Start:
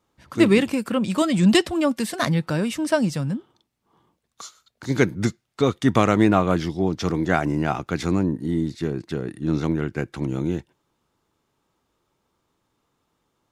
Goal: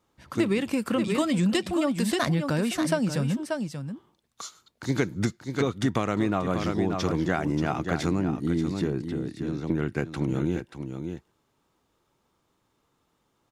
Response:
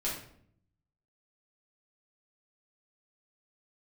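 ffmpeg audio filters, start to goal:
-filter_complex "[0:a]asettb=1/sr,asplit=3[a][b][c];[a]atrim=end=9.064[d];[b]atrim=start=9.06:end=9.7,asetpts=PTS-STARTPTS,afade=t=in:d=0.004:c=qsin,afade=t=out:st=0.636:d=0.004:c=qsin,acrossover=split=380|800|3100[e][f][g][h];[e]acompressor=threshold=-31dB:ratio=4[i];[f]acompressor=threshold=-41dB:ratio=4[j];[g]acompressor=threshold=-52dB:ratio=4[k];[h]acompressor=threshold=-58dB:ratio=4[l];[i][j][k][l]amix=inputs=4:normalize=0[m];[c]atrim=start=9.696[n];[d][m]acrossfade=d=0.004:c1=hsin:c2=qsin[o];[o][n]acrossfade=d=0.004:c1=qsin:c2=hsin,asplit=2[p][q];[q]aecho=0:1:583:0.335[r];[p][r]amix=inputs=2:normalize=0,acompressor=threshold=-21dB:ratio=6"

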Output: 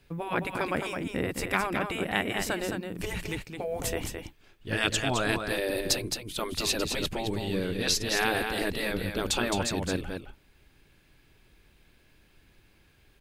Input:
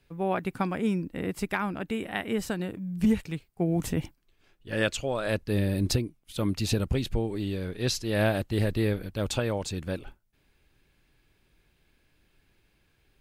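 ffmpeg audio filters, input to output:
-af "afftfilt=real='re*lt(hypot(re,im),0.178)':imag='im*lt(hypot(re,im),0.178)':win_size=1024:overlap=0.75,aecho=1:1:215:0.501,volume=5dB"

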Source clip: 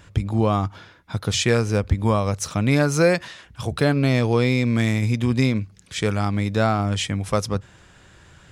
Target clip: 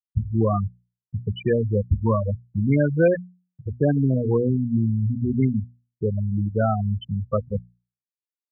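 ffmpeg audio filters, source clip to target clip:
-af "afftfilt=real='re*gte(hypot(re,im),0.355)':imag='im*gte(hypot(re,im),0.355)':win_size=1024:overlap=0.75,bandreject=f=60:t=h:w=6,bandreject=f=120:t=h:w=6,bandreject=f=180:t=h:w=6,bandreject=f=240:t=h:w=6"

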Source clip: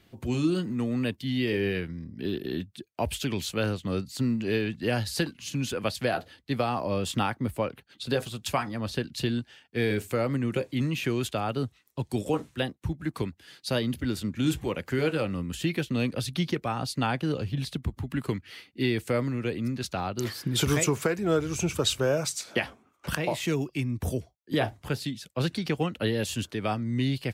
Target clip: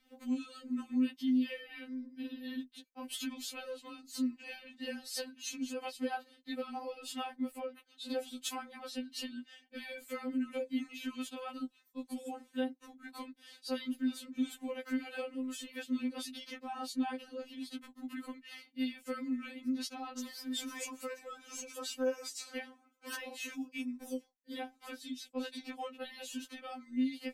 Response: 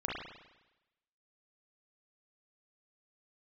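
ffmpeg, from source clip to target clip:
-filter_complex "[0:a]acompressor=threshold=-30dB:ratio=4,acrossover=split=440[a][b];[a]aeval=exprs='val(0)*(1-0.5/2+0.5/2*cos(2*PI*3*n/s))':c=same[c];[b]aeval=exprs='val(0)*(1-0.5/2-0.5/2*cos(2*PI*3*n/s))':c=same[d];[c][d]amix=inputs=2:normalize=0,afftfilt=real='re*3.46*eq(mod(b,12),0)':imag='im*3.46*eq(mod(b,12),0)':win_size=2048:overlap=0.75,volume=-1.5dB"

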